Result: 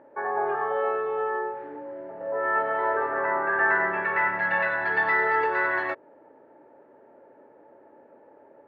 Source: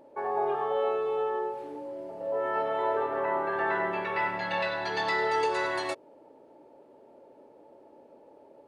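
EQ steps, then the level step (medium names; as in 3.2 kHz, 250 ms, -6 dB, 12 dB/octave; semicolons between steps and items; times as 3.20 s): high-pass 56 Hz; resonant low-pass 1.7 kHz, resonance Q 3.9; 0.0 dB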